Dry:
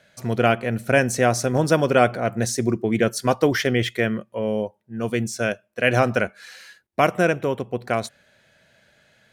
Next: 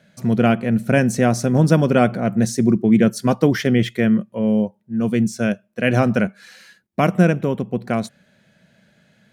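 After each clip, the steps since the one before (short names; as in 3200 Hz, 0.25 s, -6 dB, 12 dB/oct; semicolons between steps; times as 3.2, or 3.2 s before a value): bell 190 Hz +15 dB 1.1 oct; gain -2 dB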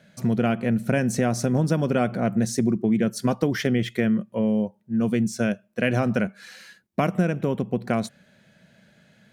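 compressor 4:1, threshold -19 dBFS, peak gain reduction 9 dB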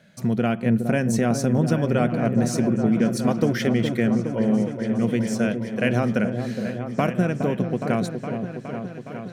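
repeats that get brighter 0.415 s, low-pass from 750 Hz, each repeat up 1 oct, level -6 dB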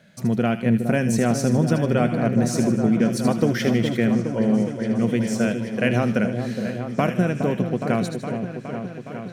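thin delay 77 ms, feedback 46%, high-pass 2300 Hz, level -7 dB; gain +1 dB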